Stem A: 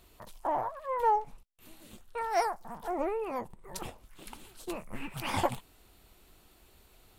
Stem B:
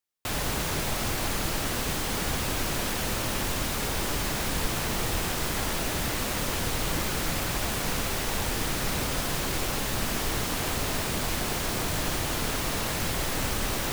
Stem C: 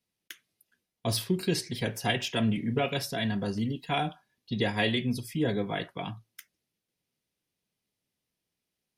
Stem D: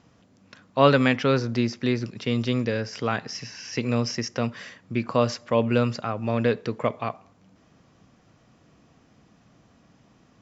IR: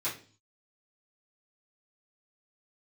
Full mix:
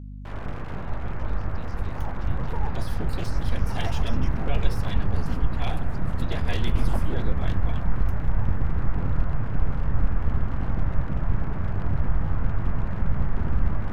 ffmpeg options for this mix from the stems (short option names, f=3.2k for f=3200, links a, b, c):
-filter_complex "[0:a]tremolo=f=6.8:d=0.73,adelay=1500,volume=-6.5dB[a];[1:a]lowpass=f=1.6k:w=0.5412,lowpass=f=1.6k:w=1.3066,flanger=delay=20:depth=2.6:speed=0.23,asubboost=boost=10:cutoff=100,volume=-1dB[b];[2:a]deesser=0.75,adelay=1700,volume=-5.5dB[c];[3:a]highpass=f=670:w=0.5412,highpass=f=670:w=1.3066,acompressor=threshold=-31dB:ratio=6,volume=-19dB[d];[a][b][c][d]amix=inputs=4:normalize=0,aeval=exprs='abs(val(0))':c=same,aeval=exprs='val(0)+0.0158*(sin(2*PI*50*n/s)+sin(2*PI*2*50*n/s)/2+sin(2*PI*3*50*n/s)/3+sin(2*PI*4*50*n/s)/4+sin(2*PI*5*50*n/s)/5)':c=same"